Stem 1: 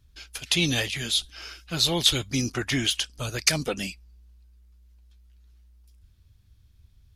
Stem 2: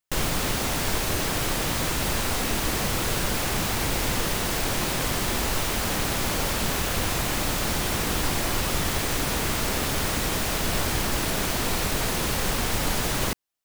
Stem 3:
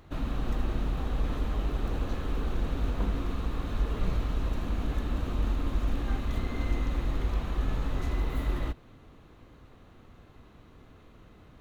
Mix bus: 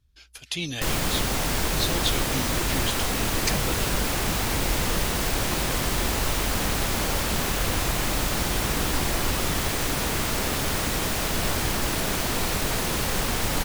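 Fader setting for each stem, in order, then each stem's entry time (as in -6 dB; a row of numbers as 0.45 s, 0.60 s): -7.0 dB, 0.0 dB, -4.0 dB; 0.00 s, 0.70 s, 0.90 s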